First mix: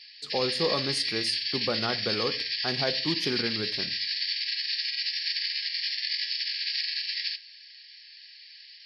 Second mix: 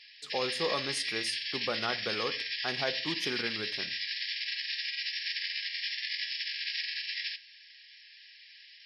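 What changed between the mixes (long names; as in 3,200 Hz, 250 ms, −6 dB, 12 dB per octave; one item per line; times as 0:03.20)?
speech: add low-shelf EQ 460 Hz −10 dB
master: add parametric band 4,500 Hz −12 dB 0.25 octaves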